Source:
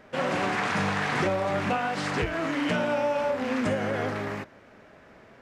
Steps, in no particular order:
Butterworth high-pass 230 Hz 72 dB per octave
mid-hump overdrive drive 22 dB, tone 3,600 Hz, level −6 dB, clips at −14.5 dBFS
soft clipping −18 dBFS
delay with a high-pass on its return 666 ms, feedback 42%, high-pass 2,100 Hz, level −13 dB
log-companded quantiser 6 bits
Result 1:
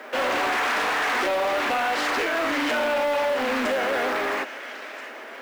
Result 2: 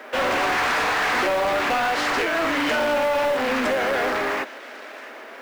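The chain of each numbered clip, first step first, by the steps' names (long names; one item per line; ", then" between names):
delay with a high-pass on its return, then mid-hump overdrive, then log-companded quantiser, then Butterworth high-pass, then soft clipping
Butterworth high-pass, then soft clipping, then mid-hump overdrive, then delay with a high-pass on its return, then log-companded quantiser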